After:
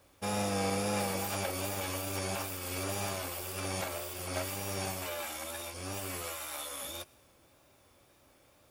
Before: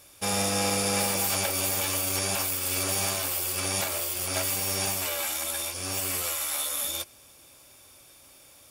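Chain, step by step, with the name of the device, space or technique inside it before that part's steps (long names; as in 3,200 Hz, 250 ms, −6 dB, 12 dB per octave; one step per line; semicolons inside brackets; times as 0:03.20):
plain cassette with noise reduction switched in (one half of a high-frequency compander decoder only; tape wow and flutter 47 cents; white noise bed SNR 31 dB)
high-shelf EQ 2,600 Hz −10 dB
level −3 dB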